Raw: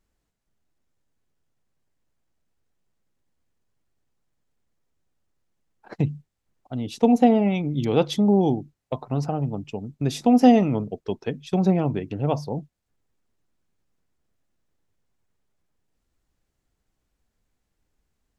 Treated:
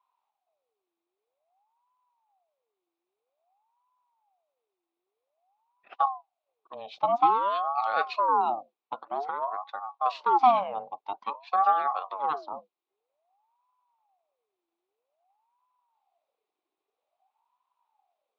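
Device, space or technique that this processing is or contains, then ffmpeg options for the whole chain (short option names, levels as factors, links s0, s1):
voice changer toy: -af "aeval=exprs='val(0)*sin(2*PI*670*n/s+670*0.5/0.51*sin(2*PI*0.51*n/s))':c=same,highpass=510,equalizer=f=530:t=q:w=4:g=-3,equalizer=f=770:t=q:w=4:g=9,equalizer=f=1100:t=q:w=4:g=7,equalizer=f=1700:t=q:w=4:g=-6,equalizer=f=2500:t=q:w=4:g=5,equalizer=f=3800:t=q:w=4:g=6,lowpass=f=4100:w=0.5412,lowpass=f=4100:w=1.3066,volume=0.501"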